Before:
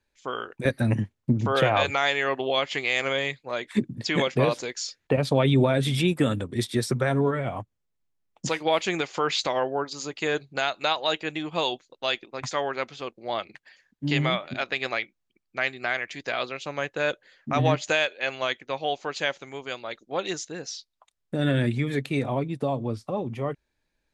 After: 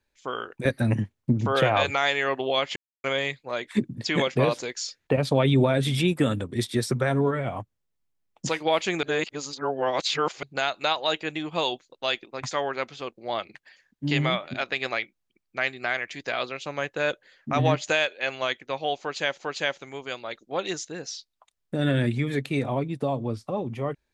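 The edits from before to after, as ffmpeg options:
ffmpeg -i in.wav -filter_complex "[0:a]asplit=6[link_01][link_02][link_03][link_04][link_05][link_06];[link_01]atrim=end=2.76,asetpts=PTS-STARTPTS,afade=type=out:start_time=2.756:duration=0.004:curve=hsin[link_07];[link_02]atrim=start=2.76:end=3.04,asetpts=PTS-STARTPTS,volume=0[link_08];[link_03]atrim=start=3.04:end=9.032,asetpts=PTS-STARTPTS,afade=type=in:duration=0.004:curve=hsin[link_09];[link_04]atrim=start=9.028:end=10.432,asetpts=PTS-STARTPTS,areverse[link_10];[link_05]atrim=start=10.428:end=19.402[link_11];[link_06]atrim=start=18.998[link_12];[link_07][link_08][link_09]concat=n=3:v=0:a=1[link_13];[link_13][link_10]acrossfade=duration=0.004:curve1=hsin:curve2=hsin[link_14];[link_14][link_11]acrossfade=duration=0.004:curve1=hsin:curve2=hsin[link_15];[link_15][link_12]acrossfade=duration=0.004:curve1=hsin:curve2=hsin" out.wav

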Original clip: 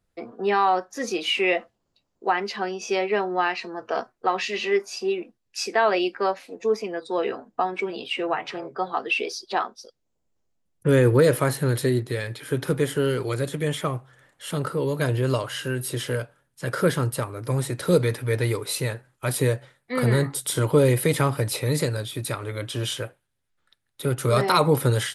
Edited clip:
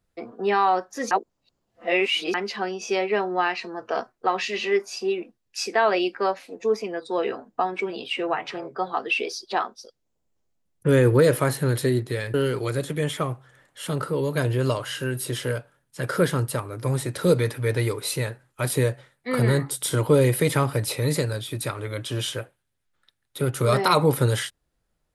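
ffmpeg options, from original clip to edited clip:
ffmpeg -i in.wav -filter_complex "[0:a]asplit=4[link_01][link_02][link_03][link_04];[link_01]atrim=end=1.112[link_05];[link_02]atrim=start=1.108:end=2.342,asetpts=PTS-STARTPTS,areverse[link_06];[link_03]atrim=start=2.338:end=12.342[link_07];[link_04]atrim=start=12.978[link_08];[link_05][link_06]acrossfade=duration=0.004:curve1=hsin:curve2=hsin[link_09];[link_09][link_07]acrossfade=duration=0.004:curve1=hsin:curve2=hsin[link_10];[link_10][link_08]acrossfade=duration=0.004:curve1=hsin:curve2=hsin" out.wav

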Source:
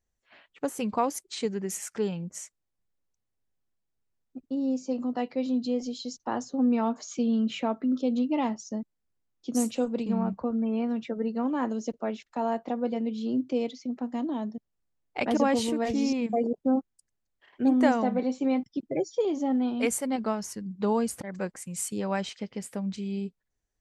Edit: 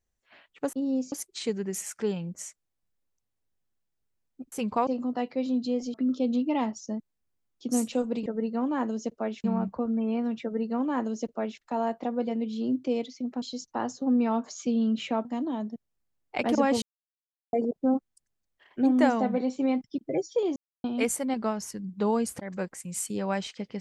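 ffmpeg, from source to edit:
ffmpeg -i in.wav -filter_complex "[0:a]asplit=14[link_01][link_02][link_03][link_04][link_05][link_06][link_07][link_08][link_09][link_10][link_11][link_12][link_13][link_14];[link_01]atrim=end=0.732[link_15];[link_02]atrim=start=4.478:end=4.872[link_16];[link_03]atrim=start=1.078:end=4.482[link_17];[link_04]atrim=start=0.728:end=1.082[link_18];[link_05]atrim=start=4.868:end=5.942[link_19];[link_06]atrim=start=7.768:end=10.092[link_20];[link_07]atrim=start=11.078:end=12.262[link_21];[link_08]atrim=start=10.088:end=14.072[link_22];[link_09]atrim=start=5.938:end=7.772[link_23];[link_10]atrim=start=14.068:end=15.64,asetpts=PTS-STARTPTS,afade=type=out:start_time=1.568:duration=0.004:curve=hsin[link_24];[link_11]atrim=start=15.64:end=16.35,asetpts=PTS-STARTPTS,volume=0[link_25];[link_12]atrim=start=16.35:end=19.38,asetpts=PTS-STARTPTS,afade=type=in:duration=0.004:curve=hsin,afade=type=out:start_time=3.026:duration=0.004:curve=hsin[link_26];[link_13]atrim=start=19.38:end=19.66,asetpts=PTS-STARTPTS,volume=0[link_27];[link_14]atrim=start=19.66,asetpts=PTS-STARTPTS,afade=type=in:duration=0.004:curve=hsin[link_28];[link_15][link_16]acrossfade=duration=0.004:curve1=hsin:curve2=hsin[link_29];[link_29][link_17]acrossfade=duration=0.004:curve1=hsin:curve2=hsin[link_30];[link_30][link_18]acrossfade=duration=0.004:curve1=hsin:curve2=hsin[link_31];[link_31][link_19]acrossfade=duration=0.004:curve1=hsin:curve2=hsin[link_32];[link_32][link_20]acrossfade=duration=0.004:curve1=hsin:curve2=hsin[link_33];[link_33][link_21]acrossfade=duration=0.004:curve1=hsin:curve2=hsin[link_34];[link_34][link_22]acrossfade=duration=0.004:curve1=hsin:curve2=hsin[link_35];[link_35][link_23]acrossfade=duration=0.004:curve1=hsin:curve2=hsin[link_36];[link_24][link_25][link_26][link_27][link_28]concat=n=5:v=0:a=1[link_37];[link_36][link_37]acrossfade=duration=0.004:curve1=hsin:curve2=hsin" out.wav

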